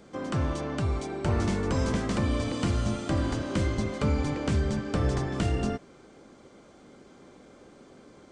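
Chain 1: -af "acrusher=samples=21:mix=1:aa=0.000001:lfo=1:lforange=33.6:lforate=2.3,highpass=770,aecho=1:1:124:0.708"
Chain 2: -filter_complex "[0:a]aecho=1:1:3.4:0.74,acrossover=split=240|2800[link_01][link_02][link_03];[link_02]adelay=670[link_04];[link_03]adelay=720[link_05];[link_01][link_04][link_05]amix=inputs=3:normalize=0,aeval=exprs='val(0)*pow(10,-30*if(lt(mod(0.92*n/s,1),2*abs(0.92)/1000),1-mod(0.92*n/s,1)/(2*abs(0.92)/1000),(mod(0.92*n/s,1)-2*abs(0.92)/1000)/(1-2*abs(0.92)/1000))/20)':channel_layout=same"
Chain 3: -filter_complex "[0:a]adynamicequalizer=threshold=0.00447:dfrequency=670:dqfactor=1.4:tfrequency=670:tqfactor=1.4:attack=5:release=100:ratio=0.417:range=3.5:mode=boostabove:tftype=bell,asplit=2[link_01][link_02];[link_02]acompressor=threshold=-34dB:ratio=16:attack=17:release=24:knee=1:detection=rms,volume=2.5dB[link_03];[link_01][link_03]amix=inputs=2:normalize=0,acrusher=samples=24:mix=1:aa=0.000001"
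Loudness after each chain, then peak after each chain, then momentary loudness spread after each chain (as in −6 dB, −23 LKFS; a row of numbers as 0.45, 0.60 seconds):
−35.0, −37.0, −23.5 LKFS; −14.5, −16.0, −11.5 dBFS; 4, 17, 2 LU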